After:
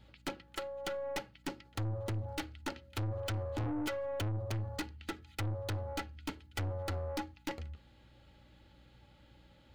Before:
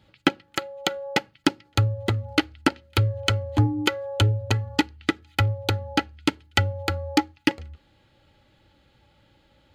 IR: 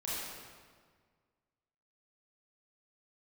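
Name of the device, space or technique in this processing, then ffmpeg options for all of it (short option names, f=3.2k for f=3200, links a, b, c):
valve amplifier with mains hum: -af "aeval=exprs='(tanh(35.5*val(0)+0.3)-tanh(0.3))/35.5':c=same,aeval=exprs='val(0)+0.001*(sin(2*PI*60*n/s)+sin(2*PI*2*60*n/s)/2+sin(2*PI*3*60*n/s)/3+sin(2*PI*4*60*n/s)/4+sin(2*PI*5*60*n/s)/5)':c=same,volume=-2.5dB"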